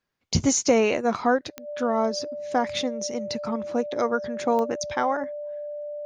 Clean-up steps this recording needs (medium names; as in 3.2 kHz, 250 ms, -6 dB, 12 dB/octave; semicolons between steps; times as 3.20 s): de-click; band-stop 590 Hz, Q 30